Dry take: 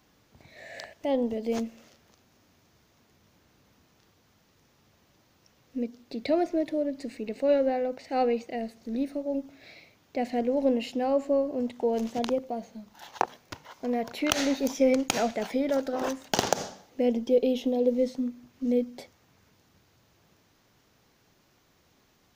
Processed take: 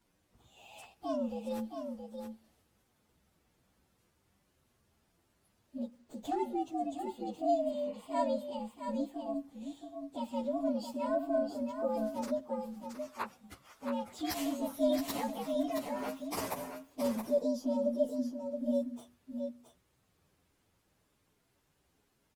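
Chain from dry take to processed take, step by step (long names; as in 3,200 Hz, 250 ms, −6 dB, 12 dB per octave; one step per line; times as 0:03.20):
partials spread apart or drawn together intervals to 121%
0:07.10–0:08.05: healed spectral selection 760–3,100 Hz both
on a send: single-tap delay 672 ms −6.5 dB
0:05.77–0:06.40: on the sum: windowed peak hold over 3 samples
level −6 dB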